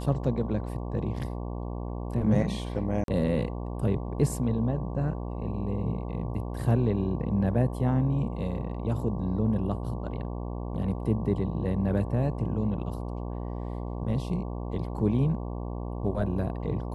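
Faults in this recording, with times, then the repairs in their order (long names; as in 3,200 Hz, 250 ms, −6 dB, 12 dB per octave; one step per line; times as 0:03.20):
mains buzz 60 Hz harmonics 19 −34 dBFS
0:03.04–0:03.08: drop-out 42 ms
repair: hum removal 60 Hz, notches 19
repair the gap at 0:03.04, 42 ms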